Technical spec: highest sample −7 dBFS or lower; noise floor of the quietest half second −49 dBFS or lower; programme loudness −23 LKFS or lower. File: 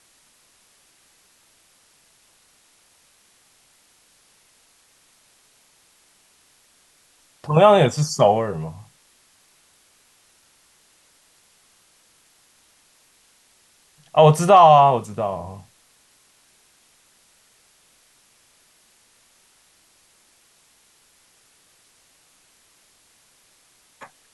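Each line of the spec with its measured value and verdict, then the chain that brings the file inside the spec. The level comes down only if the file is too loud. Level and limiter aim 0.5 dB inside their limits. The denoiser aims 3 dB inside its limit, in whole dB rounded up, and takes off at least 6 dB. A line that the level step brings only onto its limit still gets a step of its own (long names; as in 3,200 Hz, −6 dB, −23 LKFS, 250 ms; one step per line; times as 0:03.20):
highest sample −2.0 dBFS: out of spec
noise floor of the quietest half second −59 dBFS: in spec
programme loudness −16.0 LKFS: out of spec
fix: level −7.5 dB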